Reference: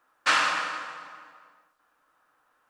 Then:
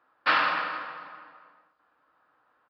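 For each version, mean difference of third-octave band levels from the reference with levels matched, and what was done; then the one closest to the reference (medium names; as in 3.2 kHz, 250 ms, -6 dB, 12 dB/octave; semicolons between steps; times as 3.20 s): 4.0 dB: high-pass 56 Hz; treble shelf 2.9 kHz -10 dB; resampled via 11.025 kHz; trim +2 dB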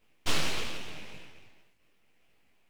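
12.0 dB: in parallel at -1 dB: compression, threshold -37 dBFS, peak gain reduction 17.5 dB; on the sum: full-wave rectifier; detune thickener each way 59 cents; trim -1.5 dB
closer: first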